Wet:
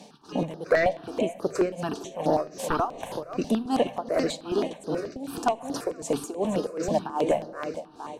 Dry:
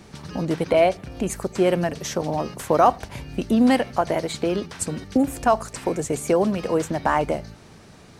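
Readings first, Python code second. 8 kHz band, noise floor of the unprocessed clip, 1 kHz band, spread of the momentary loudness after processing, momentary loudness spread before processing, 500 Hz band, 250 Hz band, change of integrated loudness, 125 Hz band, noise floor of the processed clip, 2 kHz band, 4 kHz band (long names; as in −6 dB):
−7.5 dB, −47 dBFS, −6.5 dB, 8 LU, 11 LU, −4.0 dB, −6.5 dB, −5.5 dB, −7.5 dB, −48 dBFS, −3.5 dB, −4.5 dB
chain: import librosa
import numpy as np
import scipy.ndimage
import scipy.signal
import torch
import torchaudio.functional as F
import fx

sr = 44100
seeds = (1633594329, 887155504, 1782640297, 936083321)

y = scipy.signal.sosfilt(scipy.signal.butter(2, 270.0, 'highpass', fs=sr, output='sos'), x)
y = fx.echo_feedback(y, sr, ms=469, feedback_pct=31, wet_db=-10.5)
y = y * (1.0 - 0.94 / 2.0 + 0.94 / 2.0 * np.cos(2.0 * np.pi * 2.6 * (np.arange(len(y)) / sr)))
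y = fx.peak_eq(y, sr, hz=2000.0, db=-8.0, octaves=0.49)
y = fx.fold_sine(y, sr, drive_db=9, ceiling_db=-5.5)
y = fx.high_shelf(y, sr, hz=8000.0, db=-9.5)
y = fx.room_shoebox(y, sr, seeds[0], volume_m3=3600.0, walls='mixed', distance_m=0.37)
y = fx.phaser_held(y, sr, hz=9.3, low_hz=360.0, high_hz=7800.0)
y = y * 10.0 ** (-6.5 / 20.0)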